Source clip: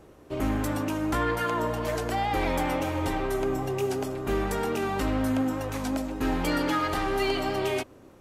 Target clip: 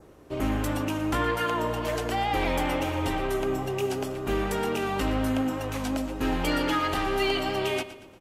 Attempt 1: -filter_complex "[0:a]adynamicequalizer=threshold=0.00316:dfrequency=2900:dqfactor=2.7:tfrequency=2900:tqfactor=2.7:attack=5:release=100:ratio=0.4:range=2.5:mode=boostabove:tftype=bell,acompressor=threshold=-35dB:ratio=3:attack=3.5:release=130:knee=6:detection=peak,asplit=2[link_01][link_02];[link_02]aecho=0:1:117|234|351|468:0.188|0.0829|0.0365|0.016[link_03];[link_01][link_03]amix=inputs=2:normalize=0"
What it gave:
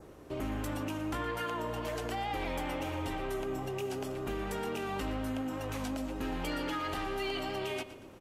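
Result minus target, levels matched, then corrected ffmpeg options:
downward compressor: peak gain reduction +10.5 dB
-filter_complex "[0:a]adynamicequalizer=threshold=0.00316:dfrequency=2900:dqfactor=2.7:tfrequency=2900:tqfactor=2.7:attack=5:release=100:ratio=0.4:range=2.5:mode=boostabove:tftype=bell,asplit=2[link_01][link_02];[link_02]aecho=0:1:117|234|351|468:0.188|0.0829|0.0365|0.016[link_03];[link_01][link_03]amix=inputs=2:normalize=0"

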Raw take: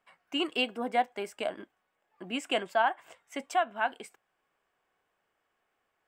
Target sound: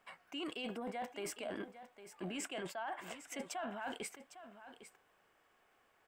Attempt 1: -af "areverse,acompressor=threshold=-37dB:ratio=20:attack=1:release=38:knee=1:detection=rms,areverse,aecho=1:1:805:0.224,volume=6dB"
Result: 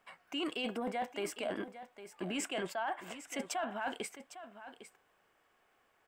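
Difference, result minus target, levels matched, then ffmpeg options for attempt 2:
downward compressor: peak gain reduction −5.5 dB
-af "areverse,acompressor=threshold=-43dB:ratio=20:attack=1:release=38:knee=1:detection=rms,areverse,aecho=1:1:805:0.224,volume=6dB"

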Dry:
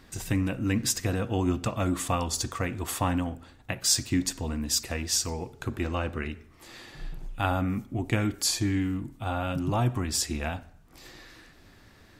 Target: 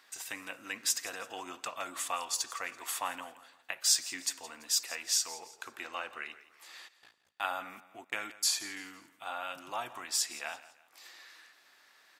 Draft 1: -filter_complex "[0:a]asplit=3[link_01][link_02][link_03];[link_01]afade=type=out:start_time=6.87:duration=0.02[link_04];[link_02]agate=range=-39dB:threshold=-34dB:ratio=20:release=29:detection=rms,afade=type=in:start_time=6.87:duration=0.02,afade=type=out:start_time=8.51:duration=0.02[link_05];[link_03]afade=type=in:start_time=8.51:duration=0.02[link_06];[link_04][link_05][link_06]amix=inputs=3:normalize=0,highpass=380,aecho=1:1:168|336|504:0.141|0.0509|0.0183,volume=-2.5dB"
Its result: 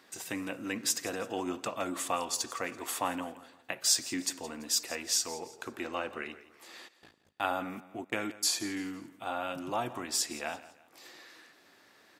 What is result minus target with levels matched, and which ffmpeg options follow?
500 Hz band +8.0 dB
-filter_complex "[0:a]asplit=3[link_01][link_02][link_03];[link_01]afade=type=out:start_time=6.87:duration=0.02[link_04];[link_02]agate=range=-39dB:threshold=-34dB:ratio=20:release=29:detection=rms,afade=type=in:start_time=6.87:duration=0.02,afade=type=out:start_time=8.51:duration=0.02[link_05];[link_03]afade=type=in:start_time=8.51:duration=0.02[link_06];[link_04][link_05][link_06]amix=inputs=3:normalize=0,highpass=940,aecho=1:1:168|336|504:0.141|0.0509|0.0183,volume=-2.5dB"

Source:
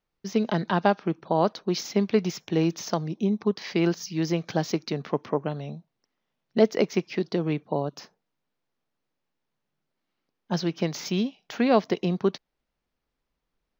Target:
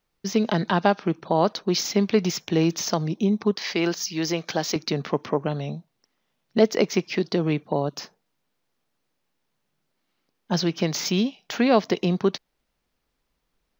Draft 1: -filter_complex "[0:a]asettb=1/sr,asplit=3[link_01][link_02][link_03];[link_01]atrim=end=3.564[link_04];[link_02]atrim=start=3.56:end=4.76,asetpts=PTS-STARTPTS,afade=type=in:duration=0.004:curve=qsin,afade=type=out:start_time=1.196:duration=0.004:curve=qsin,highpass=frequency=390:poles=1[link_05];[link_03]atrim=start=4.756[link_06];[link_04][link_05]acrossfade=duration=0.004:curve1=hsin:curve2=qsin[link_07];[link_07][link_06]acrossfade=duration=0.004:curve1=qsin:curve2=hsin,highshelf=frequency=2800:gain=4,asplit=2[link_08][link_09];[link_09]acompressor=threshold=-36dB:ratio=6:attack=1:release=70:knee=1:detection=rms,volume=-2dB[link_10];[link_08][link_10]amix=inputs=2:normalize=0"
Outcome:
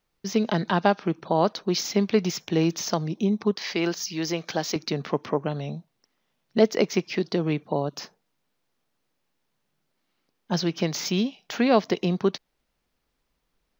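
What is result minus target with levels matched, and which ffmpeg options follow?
downward compressor: peak gain reduction +9 dB
-filter_complex "[0:a]asettb=1/sr,asplit=3[link_01][link_02][link_03];[link_01]atrim=end=3.564[link_04];[link_02]atrim=start=3.56:end=4.76,asetpts=PTS-STARTPTS,afade=type=in:duration=0.004:curve=qsin,afade=type=out:start_time=1.196:duration=0.004:curve=qsin,highpass=frequency=390:poles=1[link_05];[link_03]atrim=start=4.756[link_06];[link_04][link_05]acrossfade=duration=0.004:curve1=hsin:curve2=qsin[link_07];[link_07][link_06]acrossfade=duration=0.004:curve1=qsin:curve2=hsin,highshelf=frequency=2800:gain=4,asplit=2[link_08][link_09];[link_09]acompressor=threshold=-25.5dB:ratio=6:attack=1:release=70:knee=1:detection=rms,volume=-2dB[link_10];[link_08][link_10]amix=inputs=2:normalize=0"

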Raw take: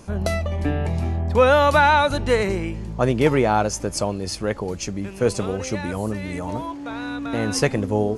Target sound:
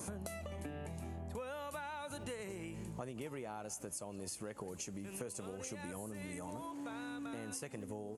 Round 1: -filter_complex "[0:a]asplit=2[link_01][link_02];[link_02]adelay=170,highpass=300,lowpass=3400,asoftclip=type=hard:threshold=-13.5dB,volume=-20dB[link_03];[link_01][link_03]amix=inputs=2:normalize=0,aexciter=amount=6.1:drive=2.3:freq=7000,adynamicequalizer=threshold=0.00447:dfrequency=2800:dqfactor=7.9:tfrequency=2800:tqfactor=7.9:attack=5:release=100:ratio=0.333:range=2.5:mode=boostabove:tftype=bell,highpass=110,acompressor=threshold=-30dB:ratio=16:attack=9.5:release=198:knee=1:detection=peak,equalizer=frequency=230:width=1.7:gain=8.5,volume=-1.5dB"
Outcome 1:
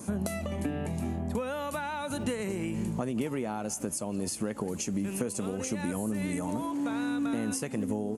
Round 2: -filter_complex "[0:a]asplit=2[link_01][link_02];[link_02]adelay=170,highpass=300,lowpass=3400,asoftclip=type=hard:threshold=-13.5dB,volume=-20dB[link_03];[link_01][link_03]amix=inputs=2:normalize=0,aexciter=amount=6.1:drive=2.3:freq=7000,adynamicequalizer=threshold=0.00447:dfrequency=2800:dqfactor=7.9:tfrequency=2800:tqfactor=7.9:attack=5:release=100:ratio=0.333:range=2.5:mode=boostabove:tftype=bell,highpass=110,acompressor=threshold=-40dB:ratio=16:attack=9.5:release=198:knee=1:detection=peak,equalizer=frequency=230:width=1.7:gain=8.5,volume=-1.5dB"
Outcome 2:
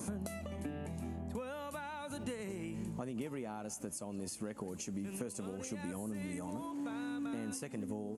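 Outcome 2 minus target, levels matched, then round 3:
250 Hz band +3.5 dB
-filter_complex "[0:a]asplit=2[link_01][link_02];[link_02]adelay=170,highpass=300,lowpass=3400,asoftclip=type=hard:threshold=-13.5dB,volume=-20dB[link_03];[link_01][link_03]amix=inputs=2:normalize=0,aexciter=amount=6.1:drive=2.3:freq=7000,adynamicequalizer=threshold=0.00447:dfrequency=2800:dqfactor=7.9:tfrequency=2800:tqfactor=7.9:attack=5:release=100:ratio=0.333:range=2.5:mode=boostabove:tftype=bell,highpass=110,acompressor=threshold=-40dB:ratio=16:attack=9.5:release=198:knee=1:detection=peak,volume=-1.5dB"

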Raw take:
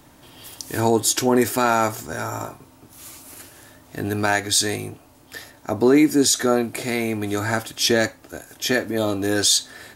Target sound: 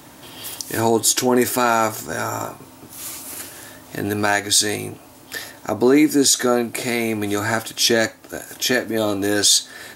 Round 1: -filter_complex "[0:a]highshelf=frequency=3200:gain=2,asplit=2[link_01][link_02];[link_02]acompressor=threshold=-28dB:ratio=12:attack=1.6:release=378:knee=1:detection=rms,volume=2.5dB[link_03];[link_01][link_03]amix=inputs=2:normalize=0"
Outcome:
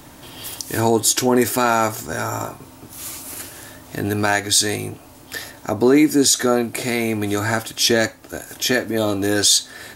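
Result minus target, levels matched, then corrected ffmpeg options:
125 Hz band +3.0 dB
-filter_complex "[0:a]highpass=frequency=130:poles=1,highshelf=frequency=3200:gain=2,asplit=2[link_01][link_02];[link_02]acompressor=threshold=-28dB:ratio=12:attack=1.6:release=378:knee=1:detection=rms,volume=2.5dB[link_03];[link_01][link_03]amix=inputs=2:normalize=0"

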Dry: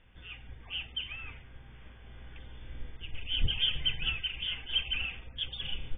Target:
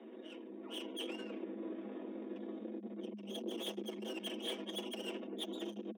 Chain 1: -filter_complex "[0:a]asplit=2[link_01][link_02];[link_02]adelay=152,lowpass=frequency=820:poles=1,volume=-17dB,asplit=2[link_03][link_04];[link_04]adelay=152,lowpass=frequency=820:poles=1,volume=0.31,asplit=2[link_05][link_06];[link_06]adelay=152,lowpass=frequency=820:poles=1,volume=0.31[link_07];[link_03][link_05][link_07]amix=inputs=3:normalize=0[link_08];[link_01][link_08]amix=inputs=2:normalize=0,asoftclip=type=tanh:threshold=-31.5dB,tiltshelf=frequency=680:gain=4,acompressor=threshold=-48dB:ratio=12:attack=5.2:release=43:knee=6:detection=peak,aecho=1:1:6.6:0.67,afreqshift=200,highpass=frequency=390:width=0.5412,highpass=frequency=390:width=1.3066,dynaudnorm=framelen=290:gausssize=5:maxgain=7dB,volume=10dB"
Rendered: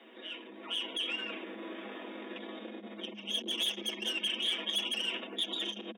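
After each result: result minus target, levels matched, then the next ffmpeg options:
500 Hz band −9.5 dB; soft clipping: distortion −5 dB
-filter_complex "[0:a]asplit=2[link_01][link_02];[link_02]adelay=152,lowpass=frequency=820:poles=1,volume=-17dB,asplit=2[link_03][link_04];[link_04]adelay=152,lowpass=frequency=820:poles=1,volume=0.31,asplit=2[link_05][link_06];[link_06]adelay=152,lowpass=frequency=820:poles=1,volume=0.31[link_07];[link_03][link_05][link_07]amix=inputs=3:normalize=0[link_08];[link_01][link_08]amix=inputs=2:normalize=0,asoftclip=type=tanh:threshold=-31.5dB,tiltshelf=frequency=680:gain=15,acompressor=threshold=-48dB:ratio=12:attack=5.2:release=43:knee=6:detection=peak,aecho=1:1:6.6:0.67,afreqshift=200,highpass=frequency=390:width=0.5412,highpass=frequency=390:width=1.3066,dynaudnorm=framelen=290:gausssize=5:maxgain=7dB,volume=10dB"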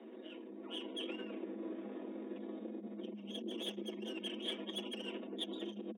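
soft clipping: distortion −5 dB
-filter_complex "[0:a]asplit=2[link_01][link_02];[link_02]adelay=152,lowpass=frequency=820:poles=1,volume=-17dB,asplit=2[link_03][link_04];[link_04]adelay=152,lowpass=frequency=820:poles=1,volume=0.31,asplit=2[link_05][link_06];[link_06]adelay=152,lowpass=frequency=820:poles=1,volume=0.31[link_07];[link_03][link_05][link_07]amix=inputs=3:normalize=0[link_08];[link_01][link_08]amix=inputs=2:normalize=0,asoftclip=type=tanh:threshold=-42dB,tiltshelf=frequency=680:gain=15,acompressor=threshold=-48dB:ratio=12:attack=5.2:release=43:knee=6:detection=peak,aecho=1:1:6.6:0.67,afreqshift=200,highpass=frequency=390:width=0.5412,highpass=frequency=390:width=1.3066,dynaudnorm=framelen=290:gausssize=5:maxgain=7dB,volume=10dB"

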